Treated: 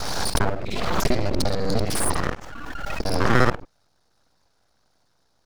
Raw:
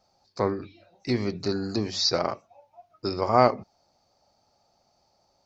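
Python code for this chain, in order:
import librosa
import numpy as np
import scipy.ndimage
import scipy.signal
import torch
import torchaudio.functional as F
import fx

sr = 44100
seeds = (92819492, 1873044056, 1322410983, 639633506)

p1 = fx.local_reverse(x, sr, ms=50.0)
p2 = fx.low_shelf(p1, sr, hz=150.0, db=10.5)
p3 = fx.rider(p2, sr, range_db=10, speed_s=0.5)
p4 = p2 + (p3 * librosa.db_to_amplitude(-1.0))
p5 = np.abs(p4)
p6 = fx.pre_swell(p5, sr, db_per_s=24.0)
y = p6 * librosa.db_to_amplitude(-3.0)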